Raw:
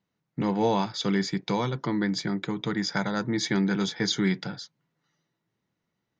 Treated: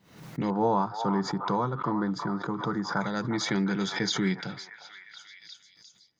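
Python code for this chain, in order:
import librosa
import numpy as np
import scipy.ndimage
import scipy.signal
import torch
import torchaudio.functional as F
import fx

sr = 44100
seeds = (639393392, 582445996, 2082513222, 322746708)

y = fx.high_shelf_res(x, sr, hz=1700.0, db=-11.0, q=3.0, at=(0.5, 3.01))
y = fx.echo_stepped(y, sr, ms=354, hz=950.0, octaves=0.7, feedback_pct=70, wet_db=-7)
y = fx.pre_swell(y, sr, db_per_s=94.0)
y = y * librosa.db_to_amplitude(-2.5)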